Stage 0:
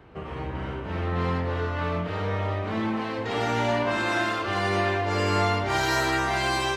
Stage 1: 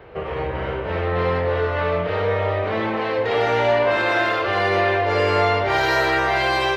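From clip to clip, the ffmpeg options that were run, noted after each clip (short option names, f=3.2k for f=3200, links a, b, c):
-filter_complex "[0:a]equalizer=f=250:t=o:w=1:g=-8,equalizer=f=500:t=o:w=1:g=11,equalizer=f=2k:t=o:w=1:g=5,equalizer=f=4k:t=o:w=1:g=3,equalizer=f=8k:t=o:w=1:g=-11,asplit=2[a][b];[b]alimiter=limit=-20dB:level=0:latency=1,volume=-1.5dB[c];[a][c]amix=inputs=2:normalize=0,volume=-1dB"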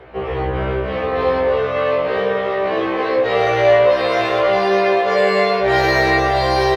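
-af "aecho=1:1:720:0.335,afftfilt=real='re*1.73*eq(mod(b,3),0)':imag='im*1.73*eq(mod(b,3),0)':win_size=2048:overlap=0.75,volume=5dB"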